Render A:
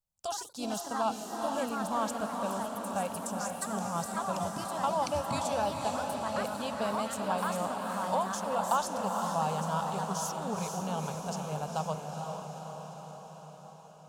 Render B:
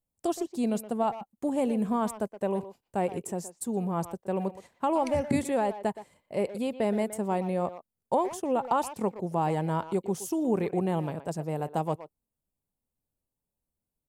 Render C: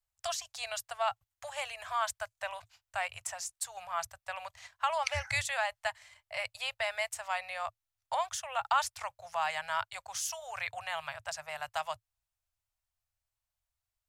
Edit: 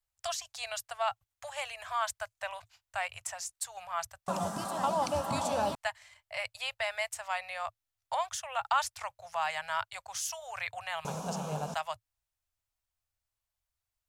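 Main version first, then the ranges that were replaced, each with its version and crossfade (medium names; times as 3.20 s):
C
4.28–5.75 s: from A
11.05–11.74 s: from A
not used: B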